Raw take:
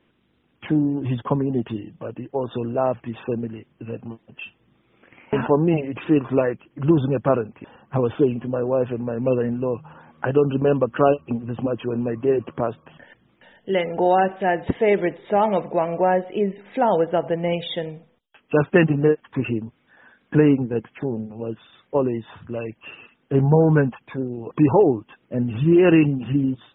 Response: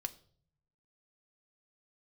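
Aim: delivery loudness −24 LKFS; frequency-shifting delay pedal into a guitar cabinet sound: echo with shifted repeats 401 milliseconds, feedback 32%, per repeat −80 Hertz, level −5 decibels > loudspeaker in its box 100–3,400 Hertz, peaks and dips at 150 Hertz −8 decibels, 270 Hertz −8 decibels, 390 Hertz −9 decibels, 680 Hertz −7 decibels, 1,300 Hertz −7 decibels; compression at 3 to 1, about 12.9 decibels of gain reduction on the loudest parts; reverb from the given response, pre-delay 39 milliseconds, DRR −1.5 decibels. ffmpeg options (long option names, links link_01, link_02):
-filter_complex "[0:a]acompressor=threshold=-29dB:ratio=3,asplit=2[link_01][link_02];[1:a]atrim=start_sample=2205,adelay=39[link_03];[link_02][link_03]afir=irnorm=-1:irlink=0,volume=3dB[link_04];[link_01][link_04]amix=inputs=2:normalize=0,asplit=5[link_05][link_06][link_07][link_08][link_09];[link_06]adelay=401,afreqshift=-80,volume=-5dB[link_10];[link_07]adelay=802,afreqshift=-160,volume=-14.9dB[link_11];[link_08]adelay=1203,afreqshift=-240,volume=-24.8dB[link_12];[link_09]adelay=1604,afreqshift=-320,volume=-34.7dB[link_13];[link_05][link_10][link_11][link_12][link_13]amix=inputs=5:normalize=0,highpass=100,equalizer=frequency=150:width_type=q:width=4:gain=-8,equalizer=frequency=270:width_type=q:width=4:gain=-8,equalizer=frequency=390:width_type=q:width=4:gain=-9,equalizer=frequency=680:width_type=q:width=4:gain=-7,equalizer=frequency=1300:width_type=q:width=4:gain=-7,lowpass=frequency=3400:width=0.5412,lowpass=frequency=3400:width=1.3066,volume=8.5dB"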